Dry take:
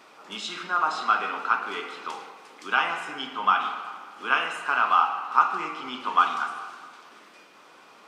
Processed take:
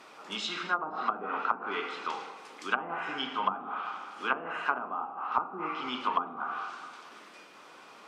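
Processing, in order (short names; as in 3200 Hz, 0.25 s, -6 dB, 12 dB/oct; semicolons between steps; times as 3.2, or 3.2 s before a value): treble ducked by the level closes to 470 Hz, closed at -20 dBFS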